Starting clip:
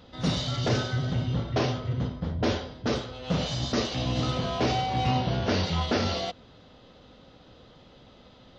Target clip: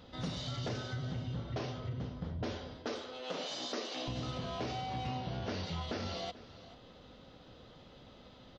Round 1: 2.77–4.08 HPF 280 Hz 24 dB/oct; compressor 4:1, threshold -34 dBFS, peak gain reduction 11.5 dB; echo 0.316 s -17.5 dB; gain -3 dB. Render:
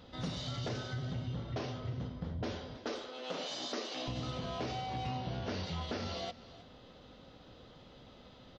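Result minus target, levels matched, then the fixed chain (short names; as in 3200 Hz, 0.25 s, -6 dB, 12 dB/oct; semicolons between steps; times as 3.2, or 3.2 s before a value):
echo 0.121 s early
2.77–4.08 HPF 280 Hz 24 dB/oct; compressor 4:1, threshold -34 dBFS, peak gain reduction 11.5 dB; echo 0.437 s -17.5 dB; gain -3 dB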